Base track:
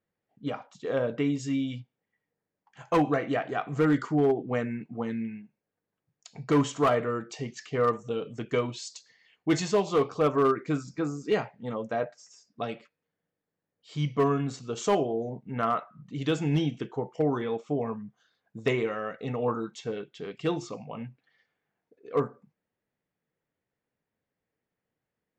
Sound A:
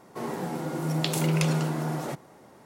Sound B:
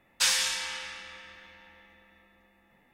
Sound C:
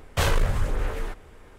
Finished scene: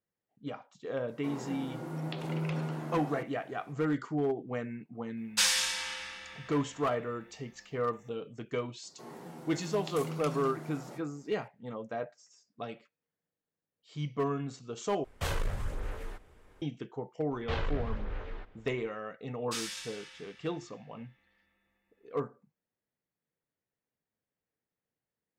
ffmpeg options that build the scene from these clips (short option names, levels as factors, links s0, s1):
-filter_complex "[1:a]asplit=2[s0][s1];[2:a]asplit=2[s2][s3];[3:a]asplit=2[s4][s5];[0:a]volume=0.447[s6];[s0]acrossover=split=3500[s7][s8];[s8]acompressor=threshold=0.00224:ratio=4:attack=1:release=60[s9];[s7][s9]amix=inputs=2:normalize=0[s10];[s1]asplit=2[s11][s12];[s12]adelay=24,volume=0.282[s13];[s11][s13]amix=inputs=2:normalize=0[s14];[s5]lowpass=f=4100:w=0.5412,lowpass=f=4100:w=1.3066[s15];[s3]equalizer=f=710:t=o:w=1.3:g=-5.5[s16];[s6]asplit=2[s17][s18];[s17]atrim=end=15.044[s19];[s4]atrim=end=1.58,asetpts=PTS-STARTPTS,volume=0.299[s20];[s18]atrim=start=16.616[s21];[s10]atrim=end=2.65,asetpts=PTS-STARTPTS,volume=0.355,afade=t=in:d=0.004:c=hsin,afade=t=out:st=2.646:d=0.004:c=hsin,adelay=1080[s22];[s2]atrim=end=2.93,asetpts=PTS-STARTPTS,volume=0.841,afade=t=in:d=0.004:c=hsin,afade=t=out:st=2.926:d=0.004:c=hsin,adelay=227997S[s23];[s14]atrim=end=2.65,asetpts=PTS-STARTPTS,volume=0.188,afade=t=in:d=0.004:c=hsin,afade=t=out:st=2.646:d=0.004:c=hsin,adelay=8830[s24];[s15]atrim=end=1.58,asetpts=PTS-STARTPTS,volume=0.282,afade=t=in:d=0.004:c=hsin,afade=t=out:st=1.576:d=0.004:c=hsin,adelay=17310[s25];[s16]atrim=end=2.93,asetpts=PTS-STARTPTS,volume=0.224,afade=t=in:d=0.004:c=hsin,afade=t=out:st=2.926:d=0.004:c=hsin,adelay=19310[s26];[s19][s20]acrossfade=d=0.004:c1=hsin:c2=hsin[s27];[s27][s21]acrossfade=d=0.004:c1=hsin:c2=hsin[s28];[s28][s22][s23][s24][s25][s26]amix=inputs=6:normalize=0"